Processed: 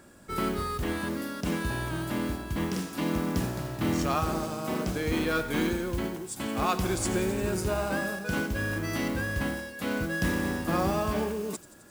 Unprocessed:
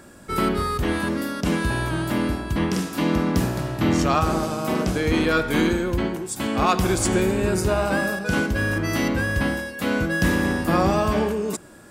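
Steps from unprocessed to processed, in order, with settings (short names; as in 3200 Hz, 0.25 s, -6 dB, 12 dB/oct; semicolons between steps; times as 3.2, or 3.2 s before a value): modulation noise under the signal 20 dB; thin delay 87 ms, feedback 76%, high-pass 4100 Hz, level -14 dB; gain -7.5 dB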